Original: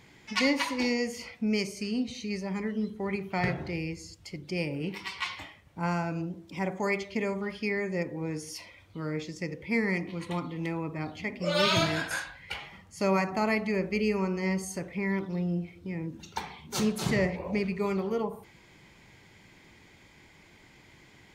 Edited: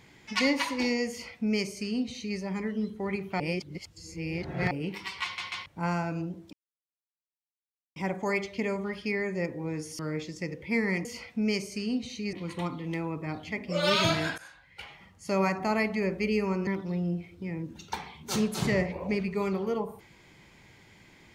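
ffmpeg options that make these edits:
-filter_complex "[0:a]asplit=12[a][b][c][d][e][f][g][h][i][j][k][l];[a]atrim=end=3.402[m];[b]atrim=start=3.398:end=4.712,asetpts=PTS-STARTPTS,areverse[n];[c]atrim=start=4.708:end=5.382[o];[d]atrim=start=5.238:end=5.382[p];[e]atrim=start=5.238:end=5.382[q];[f]atrim=start=5.658:end=6.53,asetpts=PTS-STARTPTS,afade=t=out:st=0.868:d=0.004:c=hsin,apad=pad_dur=1.43[r];[g]atrim=start=6.53:end=8.562,asetpts=PTS-STARTPTS,afade=t=in:d=0.004:c=hsin[s];[h]atrim=start=8.988:end=10.052[t];[i]atrim=start=1.098:end=2.382[u];[j]atrim=start=10.048:end=12.1,asetpts=PTS-STARTPTS,afade=t=out:st=2.048:d=0.004:c=hsin:silence=0.1[v];[k]atrim=start=12.1:end=14.392,asetpts=PTS-STARTPTS,afade=t=in:d=1.1:silence=0.1[w];[l]atrim=start=15.108[x];[m][n]acrossfade=d=0.004:c1=hsin:c2=hsin[y];[y][o]acrossfade=d=0.004:c1=hsin:c2=hsin[z];[z][p]acrossfade=d=0.004:c1=hsin:c2=hsin[aa];[aa][q]acrossfade=d=0.004:c1=hsin:c2=hsin[ab];[r][s]concat=n=2:v=0:a=1[ac];[ab][ac]acrossfade=d=0.004:c1=hsin:c2=hsin[ad];[ad][t]acrossfade=d=0.004:c1=hsin:c2=hsin[ae];[ae][u]acrossfade=d=0.004:c1=hsin:c2=hsin[af];[v][w]concat=n=2:v=0:a=1[ag];[af][ag]acrossfade=d=0.004:c1=hsin:c2=hsin[ah];[ah][x]acrossfade=d=0.004:c1=hsin:c2=hsin"

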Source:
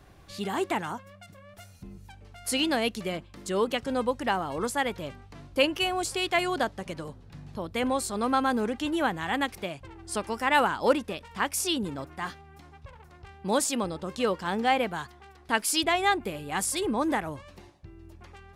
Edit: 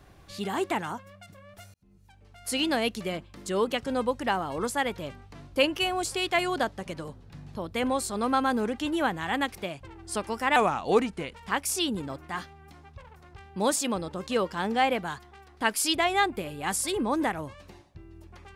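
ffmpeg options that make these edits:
-filter_complex "[0:a]asplit=4[a][b][c][d];[a]atrim=end=1.74,asetpts=PTS-STARTPTS,afade=t=out:st=1.736:d=0.004:c=hsin[e];[b]atrim=start=1.74:end=10.564,asetpts=PTS-STARTPTS,afade=t=in:d=0.96[f];[c]atrim=start=10.56:end=11.22,asetpts=PTS-STARTPTS,asetrate=37485,aresample=44100,atrim=end_sample=34242,asetpts=PTS-STARTPTS[g];[d]atrim=start=11.216[h];[e][f]concat=n=2:v=0:a=1[i];[i][g]acrossfade=d=0.004:c1=hsin:c2=hsin[j];[j][h]acrossfade=d=0.004:c1=hsin:c2=hsin"

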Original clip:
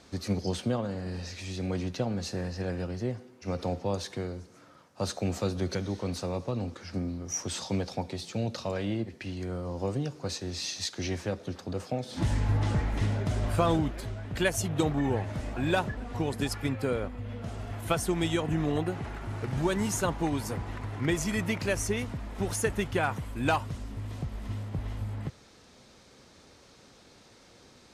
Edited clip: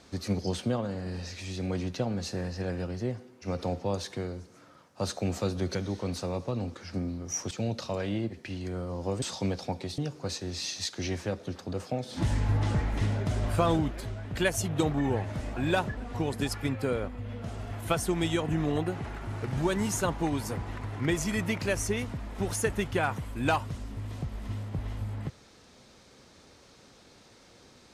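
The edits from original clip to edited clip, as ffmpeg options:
-filter_complex "[0:a]asplit=4[a][b][c][d];[a]atrim=end=7.512[e];[b]atrim=start=8.268:end=9.982[f];[c]atrim=start=7.508:end=8.272[g];[d]atrim=start=9.978[h];[e][f]acrossfade=d=0.004:c1=hsin:c2=hsin[i];[i][g]acrossfade=d=0.004:c1=hsin:c2=hsin[j];[j][h]acrossfade=d=0.004:c1=hsin:c2=hsin"

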